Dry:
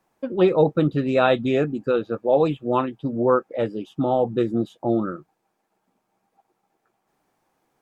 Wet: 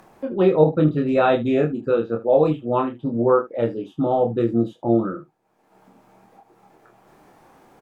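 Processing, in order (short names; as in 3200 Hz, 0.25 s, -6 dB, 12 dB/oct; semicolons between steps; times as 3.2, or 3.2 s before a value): high shelf 2400 Hz -8 dB; upward compressor, threshold -38 dBFS; on a send: early reflections 26 ms -3.5 dB, 76 ms -15 dB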